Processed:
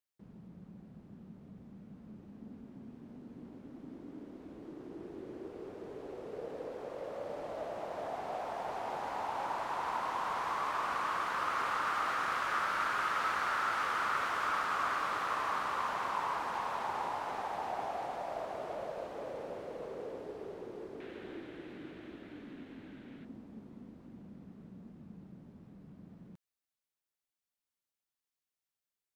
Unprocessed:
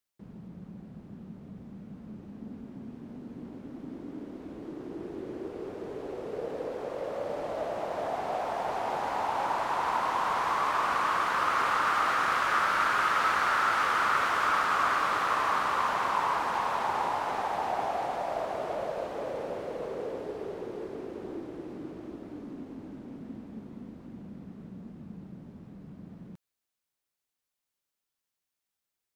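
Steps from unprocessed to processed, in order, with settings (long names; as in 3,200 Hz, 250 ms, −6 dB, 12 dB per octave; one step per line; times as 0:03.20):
0:21.00–0:23.25: flat-topped bell 2,400 Hz +12 dB
level −7 dB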